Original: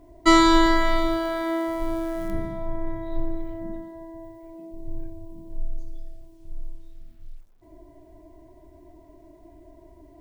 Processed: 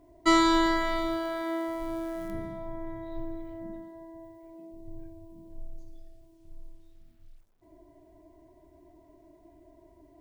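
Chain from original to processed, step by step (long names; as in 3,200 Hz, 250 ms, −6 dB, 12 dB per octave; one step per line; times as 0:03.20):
low-shelf EQ 63 Hz −8 dB
level −5.5 dB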